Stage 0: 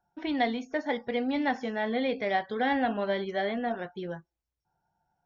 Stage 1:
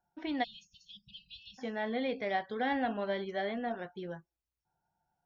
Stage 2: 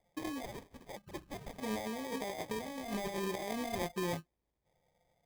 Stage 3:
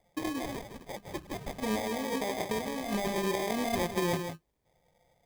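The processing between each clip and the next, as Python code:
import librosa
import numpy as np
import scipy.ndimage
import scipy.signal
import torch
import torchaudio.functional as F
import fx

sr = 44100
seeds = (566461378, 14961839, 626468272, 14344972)

y1 = fx.spec_erase(x, sr, start_s=0.44, length_s=1.15, low_hz=200.0, high_hz=2500.0)
y1 = y1 * 10.0 ** (-5.0 / 20.0)
y2 = fx.sample_hold(y1, sr, seeds[0], rate_hz=1400.0, jitter_pct=0)
y2 = fx.over_compress(y2, sr, threshold_db=-40.0, ratio=-1.0)
y2 = y2 * 10.0 ** (1.5 / 20.0)
y3 = y2 + 10.0 ** (-7.5 / 20.0) * np.pad(y2, (int(160 * sr / 1000.0), 0))[:len(y2)]
y3 = y3 * 10.0 ** (6.0 / 20.0)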